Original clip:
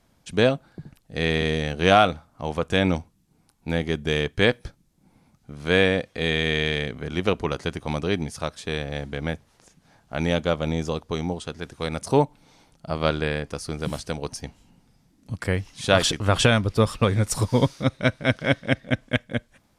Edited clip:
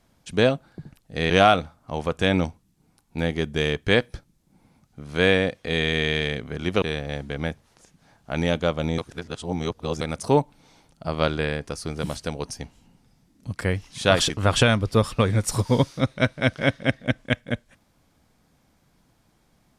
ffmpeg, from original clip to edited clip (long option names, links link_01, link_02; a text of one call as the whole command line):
ffmpeg -i in.wav -filter_complex "[0:a]asplit=5[link_01][link_02][link_03][link_04][link_05];[link_01]atrim=end=1.302[link_06];[link_02]atrim=start=1.808:end=7.332[link_07];[link_03]atrim=start=8.648:end=10.812[link_08];[link_04]atrim=start=10.808:end=11.842,asetpts=PTS-STARTPTS,areverse[link_09];[link_05]atrim=start=11.838[link_10];[link_06][link_07]acrossfade=duration=0.004:curve1=hsin:curve2=hsin[link_11];[link_11][link_08]acrossfade=duration=0.004:curve1=hsin:curve2=hsin[link_12];[link_12][link_09]acrossfade=duration=0.004:curve1=hsin:curve2=hsin[link_13];[link_13][link_10]acrossfade=duration=0.004:curve1=hsin:curve2=hsin" out.wav